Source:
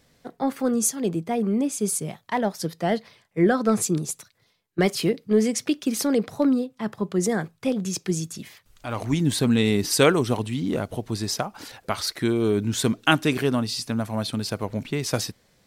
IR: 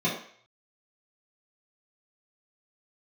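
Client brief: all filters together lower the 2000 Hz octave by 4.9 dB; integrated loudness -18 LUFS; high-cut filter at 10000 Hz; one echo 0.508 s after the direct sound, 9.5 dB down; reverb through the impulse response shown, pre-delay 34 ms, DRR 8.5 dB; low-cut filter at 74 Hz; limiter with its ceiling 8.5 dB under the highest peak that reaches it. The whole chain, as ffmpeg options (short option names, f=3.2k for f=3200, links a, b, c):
-filter_complex "[0:a]highpass=74,lowpass=10k,equalizer=f=2k:t=o:g=-7,alimiter=limit=-14dB:level=0:latency=1,aecho=1:1:508:0.335,asplit=2[a][b];[1:a]atrim=start_sample=2205,adelay=34[c];[b][c]afir=irnorm=-1:irlink=0,volume=-20dB[d];[a][d]amix=inputs=2:normalize=0,volume=6.5dB"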